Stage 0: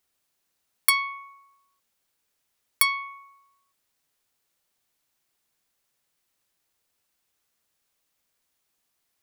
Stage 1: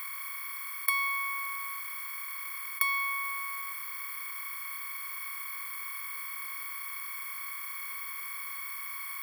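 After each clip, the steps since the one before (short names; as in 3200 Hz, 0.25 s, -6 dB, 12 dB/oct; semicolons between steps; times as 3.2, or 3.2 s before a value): per-bin compression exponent 0.2; band shelf 5700 Hz -10.5 dB; gain -8.5 dB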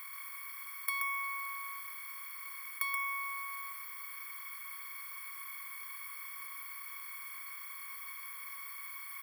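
echo 0.128 s -5 dB; gain -7.5 dB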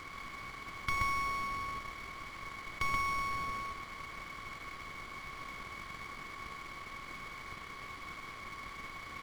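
half-waves squared off; tilt -3 dB/oct; decimation joined by straight lines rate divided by 3×; gain +1 dB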